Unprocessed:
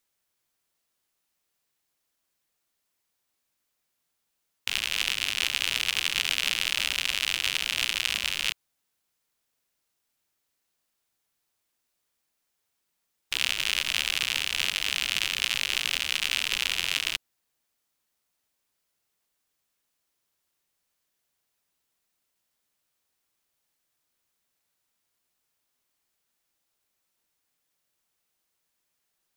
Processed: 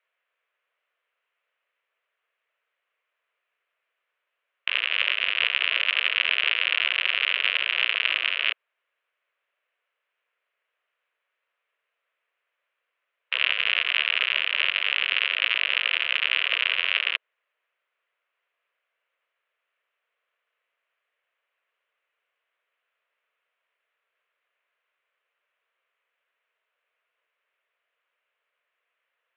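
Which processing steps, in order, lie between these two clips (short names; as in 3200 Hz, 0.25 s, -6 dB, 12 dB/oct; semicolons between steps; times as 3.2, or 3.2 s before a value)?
bell 700 Hz -12.5 dB 0.41 oct; mistuned SSB +120 Hz 370–2700 Hz; gain +8.5 dB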